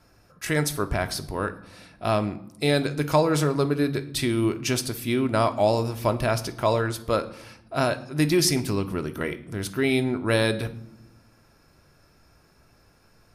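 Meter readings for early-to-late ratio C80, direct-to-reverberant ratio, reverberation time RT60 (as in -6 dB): 18.5 dB, 8.5 dB, not exponential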